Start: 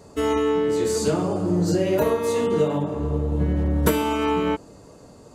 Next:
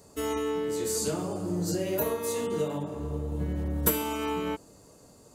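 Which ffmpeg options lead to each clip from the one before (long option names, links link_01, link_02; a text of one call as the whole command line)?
ffmpeg -i in.wav -af "aemphasis=mode=production:type=50fm,volume=-8.5dB" out.wav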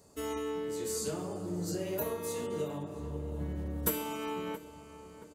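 ffmpeg -i in.wav -filter_complex "[0:a]asplit=2[link_01][link_02];[link_02]adelay=675,lowpass=frequency=2600:poles=1,volume=-14dB,asplit=2[link_03][link_04];[link_04]adelay=675,lowpass=frequency=2600:poles=1,volume=0.54,asplit=2[link_05][link_06];[link_06]adelay=675,lowpass=frequency=2600:poles=1,volume=0.54,asplit=2[link_07][link_08];[link_08]adelay=675,lowpass=frequency=2600:poles=1,volume=0.54,asplit=2[link_09][link_10];[link_10]adelay=675,lowpass=frequency=2600:poles=1,volume=0.54[link_11];[link_01][link_03][link_05][link_07][link_09][link_11]amix=inputs=6:normalize=0,volume=-6dB" out.wav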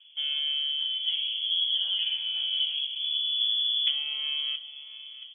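ffmpeg -i in.wav -filter_complex "[0:a]tiltshelf=frequency=970:gain=10,acrossover=split=2500[link_01][link_02];[link_02]acompressor=threshold=-58dB:ratio=4:attack=1:release=60[link_03];[link_01][link_03]amix=inputs=2:normalize=0,lowpass=frequency=3000:width_type=q:width=0.5098,lowpass=frequency=3000:width_type=q:width=0.6013,lowpass=frequency=3000:width_type=q:width=0.9,lowpass=frequency=3000:width_type=q:width=2.563,afreqshift=-3500" out.wav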